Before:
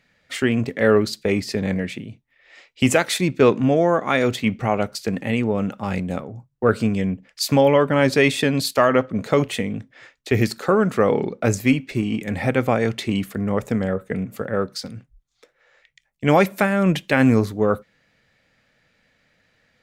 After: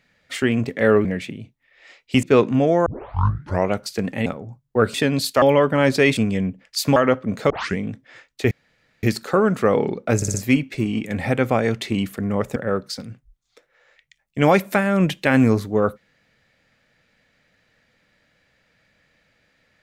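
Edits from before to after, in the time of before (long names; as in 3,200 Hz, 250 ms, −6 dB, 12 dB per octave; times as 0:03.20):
0:01.05–0:01.73: remove
0:02.91–0:03.32: remove
0:03.95: tape start 0.86 s
0:05.35–0:06.13: remove
0:06.81–0:07.60: swap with 0:08.35–0:08.83
0:09.37: tape start 0.27 s
0:10.38: splice in room tone 0.52 s
0:11.51: stutter 0.06 s, 4 plays
0:13.73–0:14.42: remove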